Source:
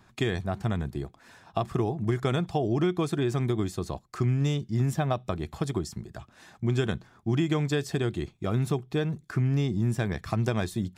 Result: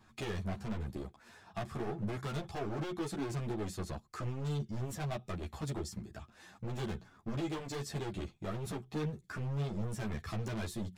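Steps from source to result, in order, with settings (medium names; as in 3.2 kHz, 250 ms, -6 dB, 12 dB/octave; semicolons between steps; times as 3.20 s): overload inside the chain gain 30 dB; three-phase chorus; trim -1.5 dB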